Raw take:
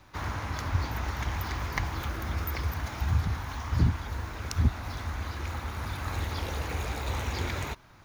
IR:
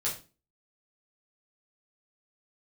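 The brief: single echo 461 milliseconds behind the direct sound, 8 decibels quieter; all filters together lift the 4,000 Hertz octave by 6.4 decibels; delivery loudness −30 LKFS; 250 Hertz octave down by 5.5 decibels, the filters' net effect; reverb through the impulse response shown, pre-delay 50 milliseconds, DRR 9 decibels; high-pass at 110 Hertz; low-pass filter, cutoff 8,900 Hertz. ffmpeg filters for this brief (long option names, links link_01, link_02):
-filter_complex "[0:a]highpass=110,lowpass=8900,equalizer=frequency=250:width_type=o:gain=-7.5,equalizer=frequency=4000:width_type=o:gain=8,aecho=1:1:461:0.398,asplit=2[link_01][link_02];[1:a]atrim=start_sample=2205,adelay=50[link_03];[link_02][link_03]afir=irnorm=-1:irlink=0,volume=-14dB[link_04];[link_01][link_04]amix=inputs=2:normalize=0,volume=3dB"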